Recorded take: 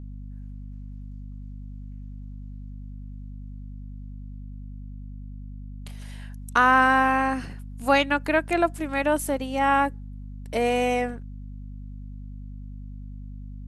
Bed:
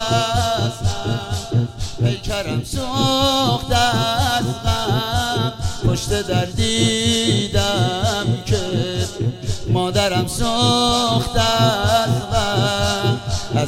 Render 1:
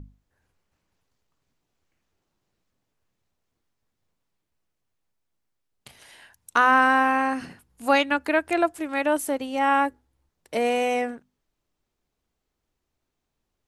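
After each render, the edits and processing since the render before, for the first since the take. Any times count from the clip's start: hum notches 50/100/150/200/250 Hz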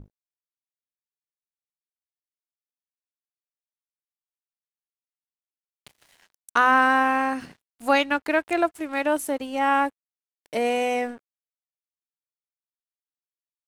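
crossover distortion -48.5 dBFS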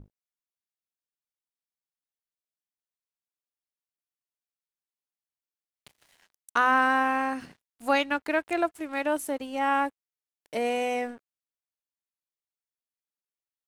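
trim -4 dB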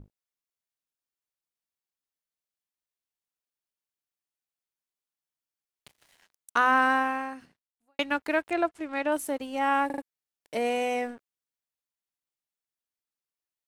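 6.92–7.99 s: fade out quadratic; 8.50–9.12 s: distance through air 61 m; 9.86 s: stutter in place 0.04 s, 4 plays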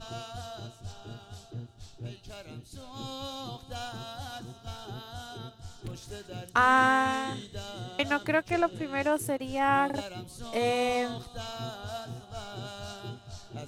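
add bed -22.5 dB

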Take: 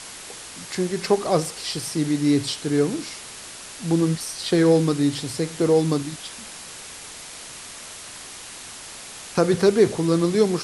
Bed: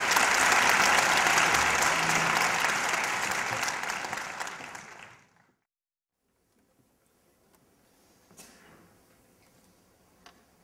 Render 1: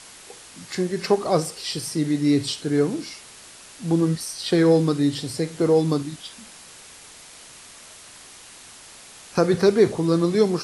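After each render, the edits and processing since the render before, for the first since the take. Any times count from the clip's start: noise print and reduce 6 dB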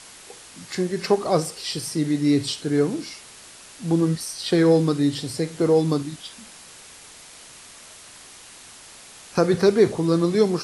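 no audible change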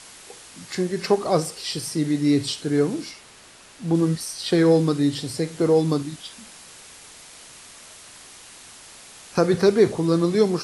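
3.11–3.95 s: treble shelf 4.4 kHz -7 dB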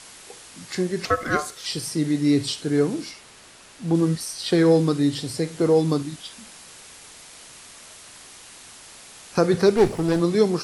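1.05–1.66 s: ring modulator 900 Hz; 9.76–10.20 s: comb filter that takes the minimum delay 0.39 ms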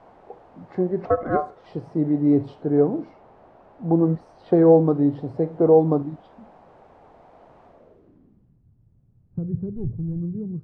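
low-pass sweep 740 Hz -> 120 Hz, 7.66–8.63 s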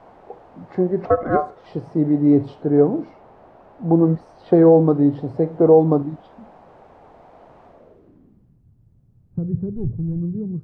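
trim +3.5 dB; peak limiter -3 dBFS, peak gain reduction 3 dB

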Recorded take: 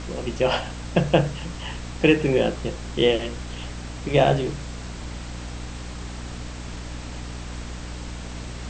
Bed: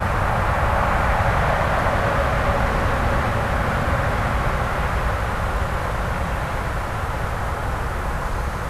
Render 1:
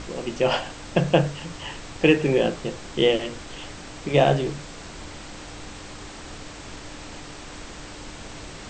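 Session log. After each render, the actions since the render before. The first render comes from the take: hum notches 60/120/180/240 Hz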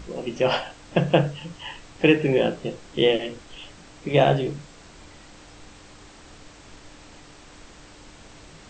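noise print and reduce 8 dB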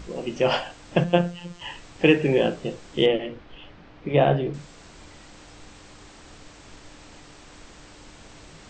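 1.04–1.61 s: robot voice 174 Hz; 3.06–4.54 s: distance through air 290 m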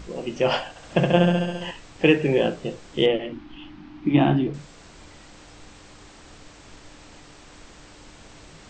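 0.69–1.71 s: flutter echo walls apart 11.7 m, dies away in 1.5 s; 3.32–4.47 s: FFT filter 130 Hz 0 dB, 200 Hz +6 dB, 320 Hz +13 dB, 470 Hz -18 dB, 830 Hz +2 dB, 1.8 kHz -1 dB, 2.7 kHz +1 dB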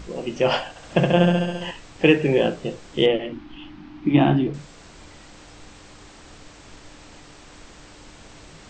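trim +1.5 dB; peak limiter -2 dBFS, peak gain reduction 2 dB

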